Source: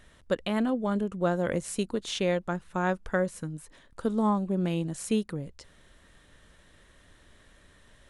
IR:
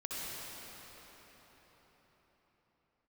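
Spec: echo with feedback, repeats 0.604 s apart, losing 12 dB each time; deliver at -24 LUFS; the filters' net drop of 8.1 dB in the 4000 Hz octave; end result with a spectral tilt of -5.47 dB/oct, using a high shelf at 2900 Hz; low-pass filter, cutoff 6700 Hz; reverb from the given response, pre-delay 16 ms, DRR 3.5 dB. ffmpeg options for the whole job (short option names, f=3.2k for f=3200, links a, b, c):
-filter_complex "[0:a]lowpass=6.7k,highshelf=f=2.9k:g=-8.5,equalizer=f=4k:t=o:g=-4,aecho=1:1:604|1208|1812:0.251|0.0628|0.0157,asplit=2[a][b];[1:a]atrim=start_sample=2205,adelay=16[c];[b][c]afir=irnorm=-1:irlink=0,volume=-6.5dB[d];[a][d]amix=inputs=2:normalize=0,volume=4.5dB"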